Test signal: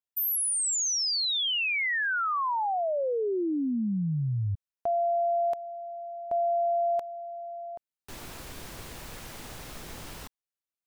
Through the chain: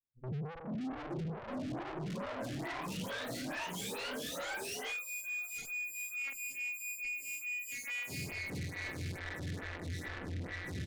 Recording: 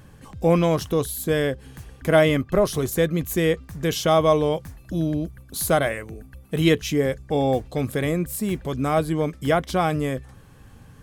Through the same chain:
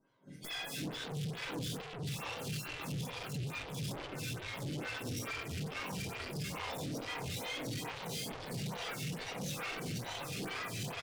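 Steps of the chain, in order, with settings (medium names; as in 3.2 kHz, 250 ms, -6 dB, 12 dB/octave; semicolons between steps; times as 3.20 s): spectrum inverted on a logarithmic axis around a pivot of 1.3 kHz; trance gate "..xx.xxxx..xxx.x" 112 bpm -12 dB; ever faster or slower copies 606 ms, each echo -2 st, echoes 3, each echo -6 dB; treble shelf 7.9 kHz -7 dB; feedback delay 694 ms, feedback 18%, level -3.5 dB; simulated room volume 96 m³, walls mixed, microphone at 2.7 m; gate -28 dBFS, range -16 dB; distance through air 81 m; compression 6:1, threshold -26 dBFS; valve stage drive 43 dB, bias 0.5; lamp-driven phase shifter 2.3 Hz; trim +7 dB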